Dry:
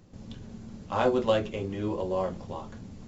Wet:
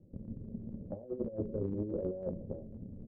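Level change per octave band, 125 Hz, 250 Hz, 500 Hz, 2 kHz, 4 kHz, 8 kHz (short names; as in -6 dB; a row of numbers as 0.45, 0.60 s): -4.0 dB, -5.5 dB, -10.5 dB, under -35 dB, under -40 dB, n/a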